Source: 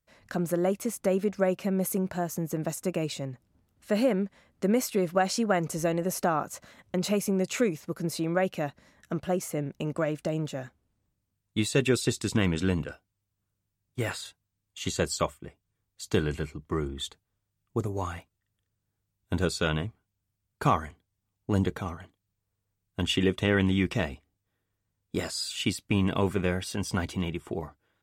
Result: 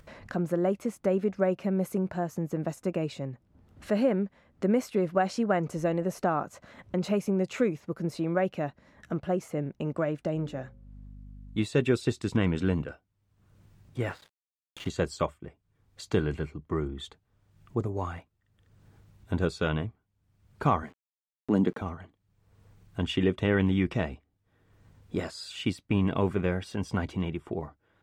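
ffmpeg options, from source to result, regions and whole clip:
-filter_complex "[0:a]asettb=1/sr,asplit=3[a][b][c];[a]atrim=end=10.354[d];[b]atrim=start=10.35:end=11.63,asetpts=PTS-STARTPTS,afade=t=in:d=0.004:c=qsin,afade=t=out:st=1.276:d=0.004:c=qsin,bandreject=f=60:t=h:w=6,bandreject=f=120:t=h:w=6,bandreject=f=180:t=h:w=6,bandreject=f=240:t=h:w=6,bandreject=f=300:t=h:w=6,bandreject=f=360:t=h:w=6,bandreject=f=420:t=h:w=6,bandreject=f=480:t=h:w=6,bandreject=f=540:t=h:w=6,aeval=exprs='val(0)+0.002*(sin(2*PI*50*n/s)+sin(2*PI*2*50*n/s)/2+sin(2*PI*3*50*n/s)/3+sin(2*PI*4*50*n/s)/4+sin(2*PI*5*50*n/s)/5)':c=same[e];[c]atrim=start=11.626[f];[d][e]acrossfade=d=0.004:c1=hsin:c2=qsin[g];[g][f]acrossfade=d=0.004:c1=qsin:c2=hsin,asettb=1/sr,asplit=3[h][i][j];[h]atrim=end=14.094[k];[i]atrim=start=14.09:end=14.9,asetpts=PTS-STARTPTS,afade=t=in:d=0.004:c=qsin,afade=t=out:st=0.806:d=0.004:c=qsin,lowpass=f=2k:p=1,acrusher=bits=6:mix=0:aa=0.5[l];[j]atrim=start=14.896[m];[k][l]acrossfade=d=0.004:c1=hsin:c2=qsin[n];[n][m]acrossfade=d=0.004:c1=qsin:c2=hsin,asettb=1/sr,asplit=3[o][p][q];[o]atrim=end=20.834[r];[p]atrim=start=20.83:end=21.82,asetpts=PTS-STARTPTS,afade=t=in:d=0.004:c=qsin,afade=t=out:st=0.986:d=0.004:c=qsin,highpass=f=220:t=q:w=1.8,aeval=exprs='val(0)*gte(abs(val(0)),0.00251)':c=same[s];[q]atrim=start=21.816[t];[r][s]acrossfade=d=0.004:c1=hsin:c2=qsin[u];[u][t]acrossfade=d=0.004:c1=qsin:c2=hsin,lowpass=f=1.8k:p=1,acompressor=mode=upward:threshold=-36dB:ratio=2.5"

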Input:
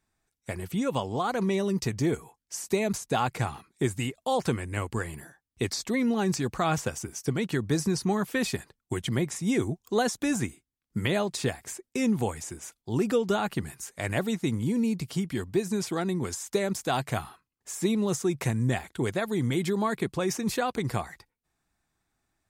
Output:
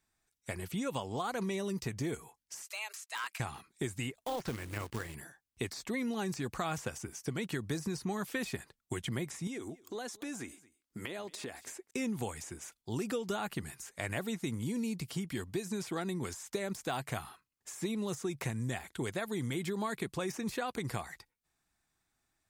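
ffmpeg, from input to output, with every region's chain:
-filter_complex "[0:a]asettb=1/sr,asplit=3[a][b][c];[a]atrim=end=2.624[d];[b]atrim=start=2.62:end=3.4,asetpts=PTS-STARTPTS,afade=t=in:d=0.004:c=qsin,afade=t=out:st=0.776:d=0.004:c=qsin,highpass=1.4k,aeval=exprs='0.0531*(abs(mod(val(0)/0.0531+3,4)-2)-1)':c=same,afreqshift=210[e];[c]atrim=start=3.396[f];[d][e]acrossfade=d=0.004:c1=hsin:c2=qsin[g];[g][f]acrossfade=d=0.004:c1=qsin:c2=hsin,asettb=1/sr,asplit=3[h][i][j];[h]atrim=end=4.144[k];[i]atrim=start=4.14:end=5.15,asetpts=PTS-STARTPTS,afade=t=in:d=0.004:c=qsin,afade=t=out:st=1.006:d=0.004:c=qsin,acrossover=split=6000[l][m];[m]acompressor=threshold=-55dB:ratio=4:attack=1:release=60[n];[l][n]amix=inputs=2:normalize=0,acrusher=bits=3:mode=log:mix=0:aa=0.000001,tremolo=f=230:d=0.519[o];[j]atrim=start=5.146[p];[k][o]acrossfade=d=0.004:c1=hsin:c2=qsin[q];[q][p]acrossfade=d=0.004:c1=qsin:c2=hsin,asettb=1/sr,asplit=3[r][s][t];[r]atrim=end=9.474[u];[s]atrim=start=9.47:end=11.91,asetpts=PTS-STARTPTS,afade=t=in:d=0.004:c=qsin,afade=t=out:st=2.436:d=0.004:c=qsin,lowshelf=f=210:t=q:w=1.5:g=-7,acompressor=threshold=-33dB:ratio=6:attack=3.2:release=140:knee=1:detection=peak,aecho=1:1:224:0.075,atrim=end_sample=107604[v];[t]atrim=start=11.906[w];[u][v]acrossfade=d=0.004:c1=hsin:c2=qsin[x];[x][w]acrossfade=d=0.004:c1=qsin:c2=hsin,deesser=0.7,tiltshelf=f=1.4k:g=-3,acrossover=split=2900|6900[y][z][aa];[y]acompressor=threshold=-30dB:ratio=4[ab];[z]acompressor=threshold=-49dB:ratio=4[ac];[aa]acompressor=threshold=-48dB:ratio=4[ad];[ab][ac][ad]amix=inputs=3:normalize=0,volume=-2.5dB"

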